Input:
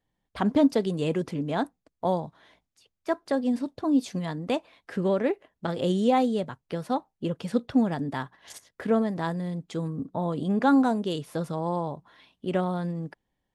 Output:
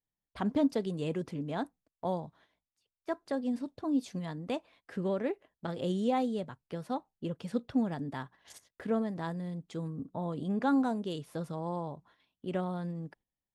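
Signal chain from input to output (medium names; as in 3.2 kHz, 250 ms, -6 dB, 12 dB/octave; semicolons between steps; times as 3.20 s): gate -53 dBFS, range -10 dB; bass shelf 190 Hz +3 dB; trim -8 dB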